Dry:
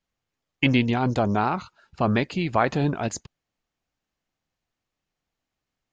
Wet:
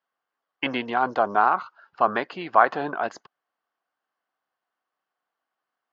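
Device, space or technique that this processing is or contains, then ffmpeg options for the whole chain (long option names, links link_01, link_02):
phone earpiece: -af "highpass=430,equalizer=frequency=740:width_type=q:width=4:gain=5,equalizer=frequency=1100:width_type=q:width=4:gain=8,equalizer=frequency=1500:width_type=q:width=4:gain=7,equalizer=frequency=2400:width_type=q:width=4:gain=-7,equalizer=frequency=3800:width_type=q:width=4:gain=-7,lowpass=frequency=4300:width=0.5412,lowpass=frequency=4300:width=1.3066"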